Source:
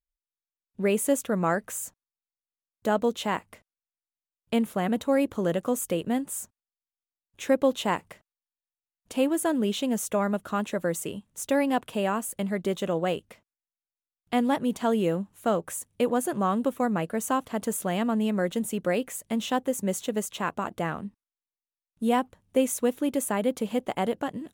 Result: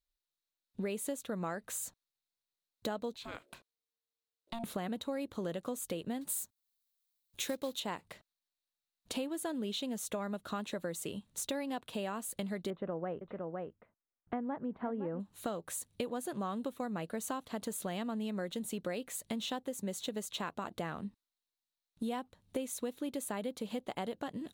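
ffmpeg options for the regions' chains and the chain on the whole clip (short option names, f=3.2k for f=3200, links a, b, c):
-filter_complex "[0:a]asettb=1/sr,asplit=3[a][b][c];[a]atrim=end=3.144[d];[b]atrim=start=3.14:end=4.64,asetpts=PTS-STARTPTS,afade=t=in:d=0.004:c=qsin,afade=t=out:st=1.496:d=0.004:c=qsin,acompressor=threshold=-43dB:ratio=2:attack=3.2:release=140:knee=1:detection=peak,aeval=exprs='val(0)*sin(2*PI*460*n/s)':c=same[e];[c]atrim=start=4.636[f];[d][e]acrossfade=d=0.004:c1=hsin:c2=qsin[g];[g][f]acrossfade=d=0.004:c1=qsin:c2=hsin,asettb=1/sr,asplit=3[h][i][j];[h]atrim=end=6.214[k];[i]atrim=start=6.21:end=7.8,asetpts=PTS-STARTPTS,afade=t=in:d=0.004:c=qsin,afade=t=out:st=1.586:d=0.004:c=qsin,aemphasis=mode=production:type=50kf,acrusher=bits=5:mode=log:mix=0:aa=0.000001[l];[j]atrim=start=7.796[m];[k][l]acrossfade=d=0.004:c1=hsin:c2=qsin[n];[n][m]acrossfade=d=0.004:c1=qsin:c2=hsin,asettb=1/sr,asplit=3[o][p][q];[o]atrim=end=12.704[r];[p]atrim=start=12.7:end=15.2,asetpts=PTS-STARTPTS,afade=t=in:d=0.004:c=qsin,afade=t=out:st=2.496:d=0.004:c=qsin,lowpass=f=1.7k:w=0.5412,lowpass=f=1.7k:w=1.3066,aecho=1:1:511:0.266,atrim=end_sample=110250[s];[q]atrim=start=15.196[t];[r][s]acrossfade=d=0.004:c1=hsin:c2=qsin[u];[u][t]acrossfade=d=0.004:c1=qsin:c2=hsin,equalizer=f=4k:w=3.1:g=10.5,acompressor=threshold=-36dB:ratio=5"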